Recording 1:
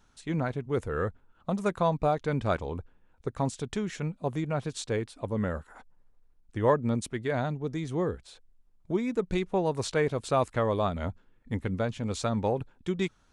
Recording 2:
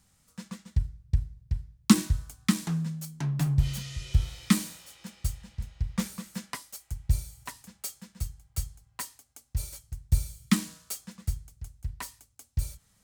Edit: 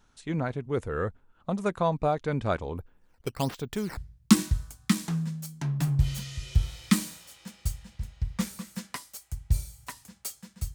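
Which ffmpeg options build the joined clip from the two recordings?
-filter_complex "[0:a]asplit=3[a][b][c];[a]afade=t=out:st=2.77:d=0.02[d];[b]acrusher=samples=9:mix=1:aa=0.000001:lfo=1:lforange=14.4:lforate=1.3,afade=t=in:st=2.77:d=0.02,afade=t=out:st=3.97:d=0.02[e];[c]afade=t=in:st=3.97:d=0.02[f];[d][e][f]amix=inputs=3:normalize=0,apad=whole_dur=10.74,atrim=end=10.74,atrim=end=3.972[g];[1:a]atrim=start=1.558:end=8.33[h];[g][h]acrossfade=d=0.004:c1=hsin:c2=hsin"

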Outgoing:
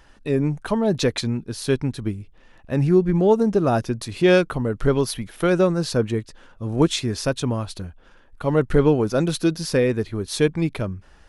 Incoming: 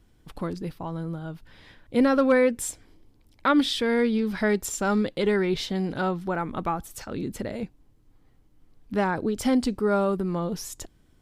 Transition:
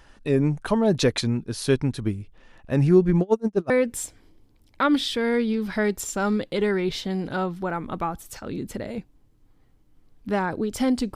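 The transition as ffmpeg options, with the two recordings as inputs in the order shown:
-filter_complex "[0:a]asettb=1/sr,asplit=3[a][b][c];[a]atrim=end=3.214[d];[b]atrim=start=3.21:end=3.7,asetpts=PTS-STARTPTS,afade=t=in:d=0.004:c=qsin,afade=t=out:st=0.486:d=0.004:c=qsin,aeval=exprs='val(0)*pow(10,-34*(0.5-0.5*cos(2*PI*8*n/s))/20)':c=same[e];[c]atrim=start=3.696[f];[d][e]acrossfade=d=0.004:c1=hsin:c2=qsin[g];[g][f]acrossfade=d=0.004:c1=qsin:c2=hsin,apad=whole_dur=11.15,atrim=end=11.15,atrim=end=3.702[h];[1:a]atrim=start=2.348:end=9.8[i];[h][i]acrossfade=d=0.004:c1=hsin:c2=hsin"

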